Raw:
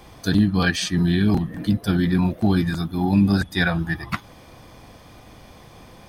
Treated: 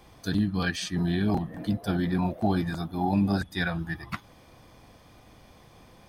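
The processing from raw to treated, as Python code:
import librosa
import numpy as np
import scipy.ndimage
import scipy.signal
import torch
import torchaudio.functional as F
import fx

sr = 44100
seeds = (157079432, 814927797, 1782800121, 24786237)

y = fx.peak_eq(x, sr, hz=690.0, db=10.0, octaves=1.1, at=(0.96, 3.39))
y = y * librosa.db_to_amplitude(-8.0)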